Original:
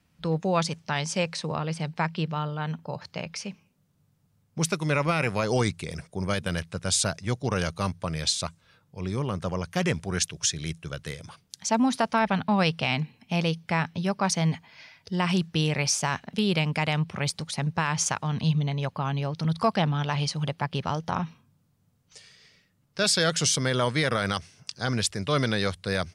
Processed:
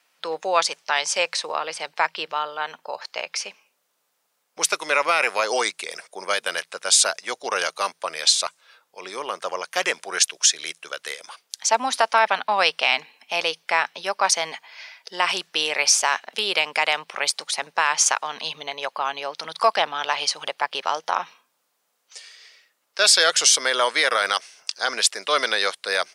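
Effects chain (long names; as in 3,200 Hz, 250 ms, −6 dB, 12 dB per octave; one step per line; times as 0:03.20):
Bessel high-pass filter 700 Hz, order 4
level +8.5 dB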